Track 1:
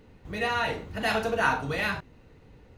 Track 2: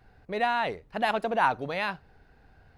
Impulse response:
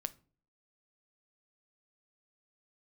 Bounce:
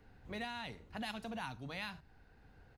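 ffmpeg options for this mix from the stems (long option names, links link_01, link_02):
-filter_complex "[0:a]volume=-11.5dB[link_01];[1:a]equalizer=frequency=480:width_type=o:width=0.6:gain=-10,volume=-1,adelay=1.5,volume=-5.5dB,asplit=2[link_02][link_03];[link_03]apad=whole_len=122328[link_04];[link_01][link_04]sidechaincompress=threshold=-36dB:ratio=8:attack=26:release=1360[link_05];[link_05][link_02]amix=inputs=2:normalize=0,acrossover=split=240|3000[link_06][link_07][link_08];[link_07]acompressor=threshold=-44dB:ratio=6[link_09];[link_06][link_09][link_08]amix=inputs=3:normalize=0"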